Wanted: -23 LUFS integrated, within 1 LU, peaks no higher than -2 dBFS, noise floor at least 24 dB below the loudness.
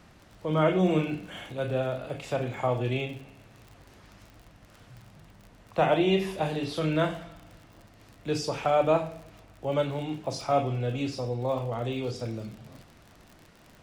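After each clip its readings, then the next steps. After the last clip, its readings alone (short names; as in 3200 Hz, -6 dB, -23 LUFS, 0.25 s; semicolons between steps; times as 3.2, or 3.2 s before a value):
ticks 46/s; loudness -28.5 LUFS; peak -10.5 dBFS; loudness target -23.0 LUFS
-> de-click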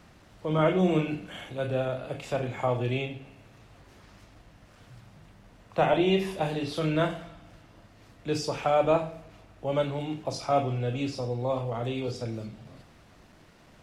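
ticks 0.072/s; loudness -29.0 LUFS; peak -10.5 dBFS; loudness target -23.0 LUFS
-> gain +6 dB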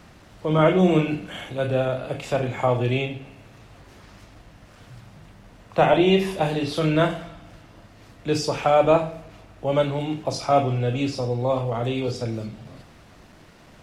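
loudness -23.0 LUFS; peak -4.5 dBFS; noise floor -50 dBFS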